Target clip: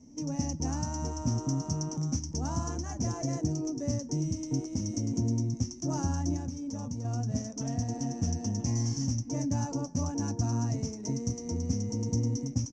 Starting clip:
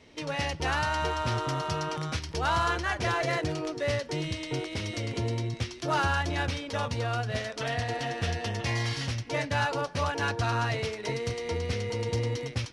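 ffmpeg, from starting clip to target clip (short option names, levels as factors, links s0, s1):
-filter_complex "[0:a]firequalizer=gain_entry='entry(100,0);entry(270,11);entry(380,-10);entry(830,-9);entry(1400,-22);entry(3900,-28);entry(5900,9);entry(10000,-21)':delay=0.05:min_phase=1,asettb=1/sr,asplit=3[s0][s1][s2];[s0]atrim=end=6.364[s3];[s1]atrim=start=6.36:end=7.05,asetpts=PTS-STARTPTS,afade=t=in:d=0.004:c=qsin,afade=t=out:st=0.686:d=0.004:c=qsin,acompressor=threshold=0.0224:ratio=5[s4];[s2]atrim=start=7.046[s5];[s3][s4]acrossfade=d=0.004:c1=hsin:c2=qsin[s6];[s6][s5]acrossfade=d=0.004:c1=qsin:c2=hsin"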